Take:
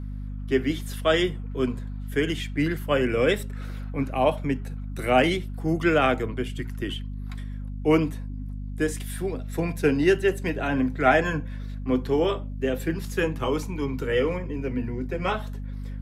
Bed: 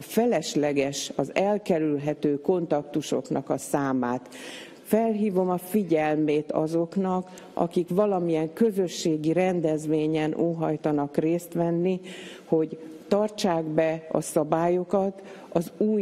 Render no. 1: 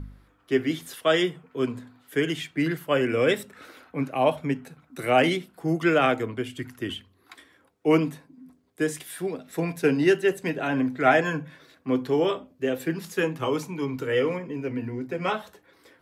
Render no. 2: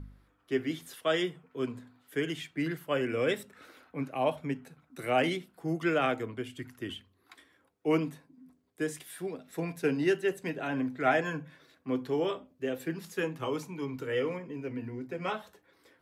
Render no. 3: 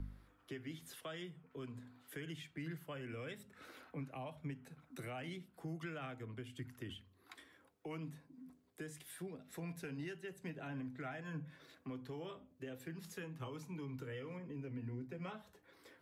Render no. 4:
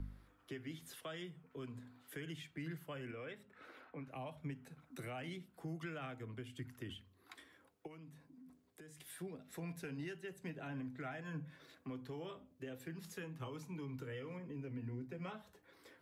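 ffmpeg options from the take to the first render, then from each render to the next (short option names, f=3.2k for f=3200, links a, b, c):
-af "bandreject=f=50:t=h:w=4,bandreject=f=100:t=h:w=4,bandreject=f=150:t=h:w=4,bandreject=f=200:t=h:w=4,bandreject=f=250:t=h:w=4"
-af "volume=-7dB"
-filter_complex "[0:a]acrossover=split=690[a][b];[a]alimiter=level_in=6dB:limit=-24dB:level=0:latency=1:release=211,volume=-6dB[c];[c][b]amix=inputs=2:normalize=0,acrossover=split=180[d][e];[e]acompressor=threshold=-52dB:ratio=3[f];[d][f]amix=inputs=2:normalize=0"
-filter_complex "[0:a]asettb=1/sr,asplit=3[a][b][c];[a]atrim=end=3.114[d];[b]atrim=start=3.11:end=4.08,asetpts=PTS-STARTPTS,afade=t=in:d=0.004:c=qsin,afade=t=out:st=0.966:d=0.004:c=qsin,bass=f=250:g=-7,treble=f=4k:g=-13[e];[c]atrim=start=4.076[f];[d][e]acrossfade=d=0.004:c1=hsin:c2=qsin[g];[g][f]acrossfade=d=0.004:c1=qsin:c2=hsin,asplit=3[h][i][j];[h]afade=t=out:st=7.86:d=0.02[k];[i]acompressor=threshold=-57dB:ratio=2.5:attack=3.2:release=140:knee=1:detection=peak,afade=t=in:st=7.86:d=0.02,afade=t=out:st=8.98:d=0.02[l];[j]afade=t=in:st=8.98:d=0.02[m];[k][l][m]amix=inputs=3:normalize=0"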